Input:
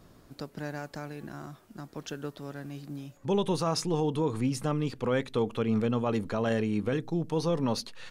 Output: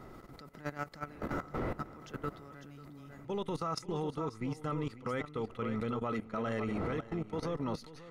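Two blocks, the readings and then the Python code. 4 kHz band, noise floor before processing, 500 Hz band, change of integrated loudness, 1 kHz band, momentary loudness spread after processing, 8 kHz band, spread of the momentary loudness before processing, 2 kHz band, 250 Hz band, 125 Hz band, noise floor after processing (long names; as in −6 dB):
−10.5 dB, −59 dBFS, −7.5 dB, −7.0 dB, −3.5 dB, 16 LU, −13.5 dB, 14 LU, −4.0 dB, −7.5 dB, −7.5 dB, −52 dBFS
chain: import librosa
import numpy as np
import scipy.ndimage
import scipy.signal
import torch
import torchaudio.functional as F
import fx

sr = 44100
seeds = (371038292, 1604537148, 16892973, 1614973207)

y = fx.dmg_wind(x, sr, seeds[0], corner_hz=450.0, level_db=-42.0)
y = y + 10.0 ** (-8.5 / 20.0) * np.pad(y, (int(545 * sr / 1000.0), 0))[:len(y)]
y = fx.dynamic_eq(y, sr, hz=190.0, q=6.0, threshold_db=-46.0, ratio=4.0, max_db=-3)
y = fx.rider(y, sr, range_db=4, speed_s=0.5)
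y = fx.peak_eq(y, sr, hz=7700.0, db=-2.5, octaves=2.3)
y = fx.small_body(y, sr, hz=(1300.0, 2000.0), ring_ms=35, db=15)
y = fx.transient(y, sr, attack_db=-6, sustain_db=2)
y = fx.level_steps(y, sr, step_db=16)
y = y * 10.0 ** (-2.5 / 20.0)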